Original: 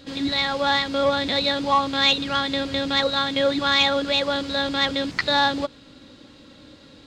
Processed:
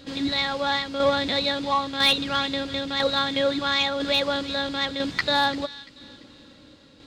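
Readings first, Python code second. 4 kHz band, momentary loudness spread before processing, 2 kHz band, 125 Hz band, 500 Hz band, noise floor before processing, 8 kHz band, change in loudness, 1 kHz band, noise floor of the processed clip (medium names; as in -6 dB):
-2.0 dB, 6 LU, -2.5 dB, -2.5 dB, -2.0 dB, -49 dBFS, -1.5 dB, -2.5 dB, -3.0 dB, -51 dBFS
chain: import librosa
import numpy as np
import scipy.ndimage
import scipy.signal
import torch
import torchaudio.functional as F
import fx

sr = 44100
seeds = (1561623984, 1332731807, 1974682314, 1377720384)

y = fx.tremolo_shape(x, sr, shape='saw_down', hz=1.0, depth_pct=50)
y = fx.echo_wet_highpass(y, sr, ms=342, feedback_pct=36, hz=2200.0, wet_db=-14.0)
y = np.clip(y, -10.0 ** (-11.5 / 20.0), 10.0 ** (-11.5 / 20.0))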